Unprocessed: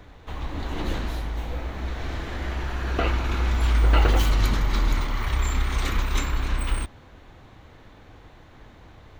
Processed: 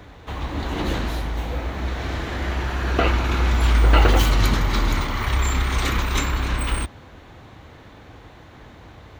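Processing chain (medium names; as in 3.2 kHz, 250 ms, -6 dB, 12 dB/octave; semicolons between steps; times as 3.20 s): high-pass 51 Hz; trim +5.5 dB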